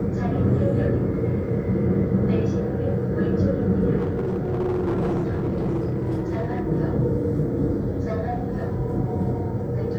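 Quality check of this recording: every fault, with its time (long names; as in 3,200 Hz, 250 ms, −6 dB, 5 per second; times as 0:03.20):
0:03.97–0:06.60: clipping −20 dBFS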